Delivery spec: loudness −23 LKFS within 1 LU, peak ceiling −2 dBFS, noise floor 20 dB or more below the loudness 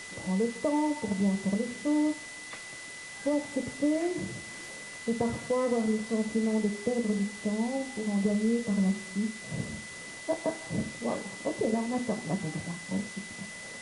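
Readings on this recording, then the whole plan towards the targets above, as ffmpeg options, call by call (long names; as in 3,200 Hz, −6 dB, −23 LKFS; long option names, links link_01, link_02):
interfering tone 2,000 Hz; level of the tone −43 dBFS; background noise floor −43 dBFS; target noise floor −52 dBFS; integrated loudness −31.5 LKFS; sample peak −16.0 dBFS; target loudness −23.0 LKFS
→ -af "bandreject=frequency=2000:width=30"
-af "afftdn=noise_reduction=9:noise_floor=-43"
-af "volume=8.5dB"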